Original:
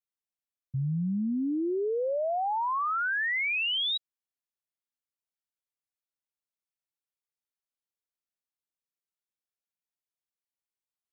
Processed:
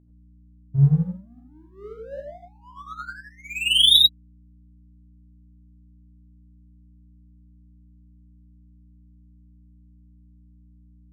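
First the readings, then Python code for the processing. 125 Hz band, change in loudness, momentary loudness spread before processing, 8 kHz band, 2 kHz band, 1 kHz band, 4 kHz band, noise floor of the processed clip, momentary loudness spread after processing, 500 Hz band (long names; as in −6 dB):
+12.5 dB, +11.0 dB, 5 LU, can't be measured, −3.5 dB, −12.5 dB, +14.0 dB, −53 dBFS, 24 LU, −8.5 dB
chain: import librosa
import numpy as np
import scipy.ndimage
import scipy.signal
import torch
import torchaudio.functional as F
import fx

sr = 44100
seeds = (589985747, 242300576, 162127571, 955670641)

y = fx.high_shelf(x, sr, hz=2500.0, db=10.5)
y = fx.hum_notches(y, sr, base_hz=60, count=2)
y = fx.phaser_stages(y, sr, stages=2, low_hz=150.0, high_hz=2600.0, hz=0.41, feedback_pct=20)
y = y + 0.77 * np.pad(y, (int(7.1 * sr / 1000.0), 0))[:len(y)]
y = fx.power_curve(y, sr, exponent=1.4)
y = fx.graphic_eq_15(y, sr, hz=(100, 400, 2500), db=(9, -6, -5))
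y = fx.dmg_buzz(y, sr, base_hz=60.0, harmonics=5, level_db=-51.0, tilt_db=-4, odd_only=False)
y = fx.rev_gated(y, sr, seeds[0], gate_ms=120, shape='rising', drr_db=0.5)
y = fx.upward_expand(y, sr, threshold_db=-43.0, expansion=1.5)
y = F.gain(torch.from_numpy(y), 6.5).numpy()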